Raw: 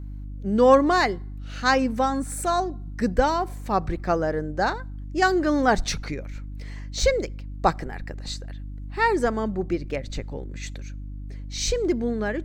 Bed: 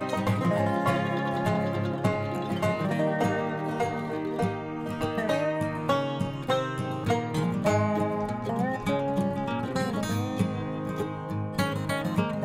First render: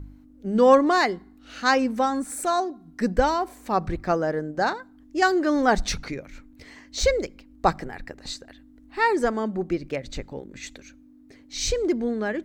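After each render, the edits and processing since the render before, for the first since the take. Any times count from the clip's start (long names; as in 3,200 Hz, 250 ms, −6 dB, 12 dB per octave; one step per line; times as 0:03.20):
hum removal 50 Hz, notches 4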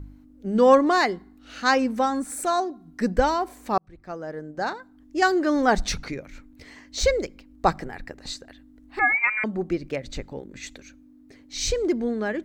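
0:03.78–0:05.18: fade in
0:08.99–0:09.44: voice inversion scrambler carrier 2,600 Hz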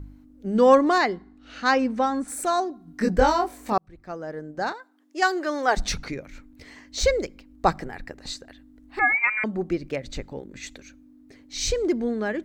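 0:00.98–0:02.28: high-frequency loss of the air 74 metres
0:02.85–0:03.73: double-tracking delay 23 ms −2 dB
0:04.72–0:05.77: Bessel high-pass filter 480 Hz, order 4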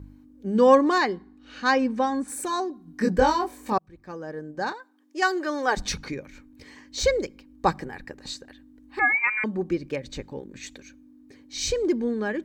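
notch comb filter 680 Hz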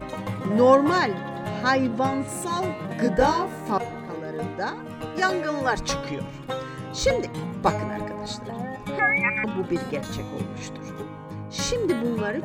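mix in bed −4.5 dB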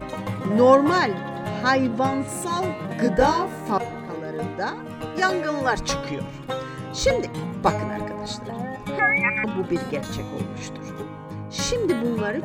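level +1.5 dB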